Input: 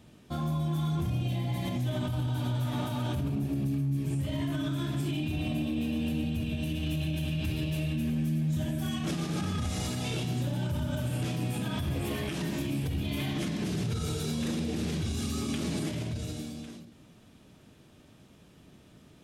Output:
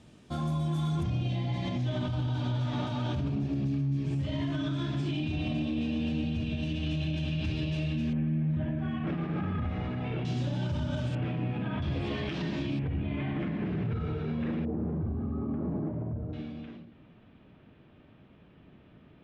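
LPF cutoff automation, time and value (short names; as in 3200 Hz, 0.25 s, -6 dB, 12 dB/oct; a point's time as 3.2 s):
LPF 24 dB/oct
9500 Hz
from 1.03 s 5700 Hz
from 8.13 s 2300 Hz
from 10.25 s 5900 Hz
from 11.15 s 2600 Hz
from 11.82 s 4600 Hz
from 12.79 s 2300 Hz
from 14.65 s 1100 Hz
from 16.33 s 2900 Hz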